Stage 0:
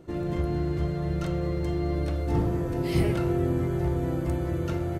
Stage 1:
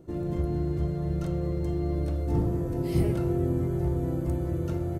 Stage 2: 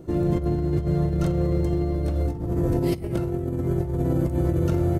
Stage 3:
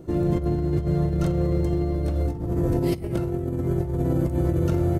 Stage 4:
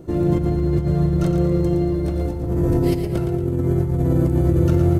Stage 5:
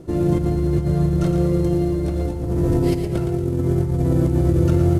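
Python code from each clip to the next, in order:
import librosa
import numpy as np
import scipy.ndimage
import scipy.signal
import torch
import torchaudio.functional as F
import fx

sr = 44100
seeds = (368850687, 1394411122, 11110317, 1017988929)

y1 = fx.peak_eq(x, sr, hz=2300.0, db=-9.5, octaves=3.0)
y2 = fx.over_compress(y1, sr, threshold_db=-29.0, ratio=-0.5)
y2 = y2 * librosa.db_to_amplitude(6.5)
y3 = y2
y4 = fx.echo_feedback(y3, sr, ms=115, feedback_pct=42, wet_db=-7.5)
y4 = y4 * librosa.db_to_amplitude(2.5)
y5 = fx.cvsd(y4, sr, bps=64000)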